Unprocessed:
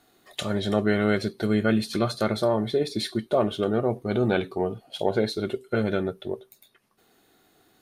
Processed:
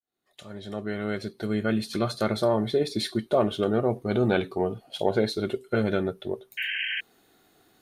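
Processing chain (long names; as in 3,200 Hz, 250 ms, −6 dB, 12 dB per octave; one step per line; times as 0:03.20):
fade in at the beginning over 2.54 s
sound drawn into the spectrogram noise, 0:06.57–0:07.01, 1,500–3,200 Hz −30 dBFS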